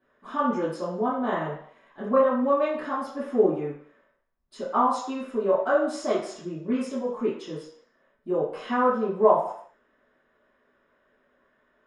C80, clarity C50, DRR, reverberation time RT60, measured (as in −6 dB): 7.5 dB, 3.0 dB, −14.0 dB, 0.65 s